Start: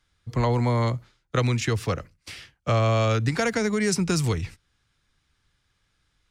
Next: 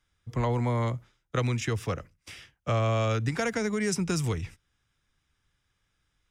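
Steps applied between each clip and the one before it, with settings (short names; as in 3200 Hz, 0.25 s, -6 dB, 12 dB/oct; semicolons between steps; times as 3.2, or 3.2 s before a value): notch 4300 Hz, Q 5.5; gain -4.5 dB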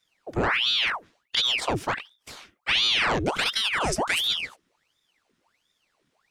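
ring modulator with a swept carrier 1900 Hz, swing 90%, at 1.4 Hz; gain +5.5 dB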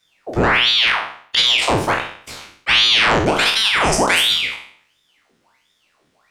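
spectral trails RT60 0.55 s; gain +6.5 dB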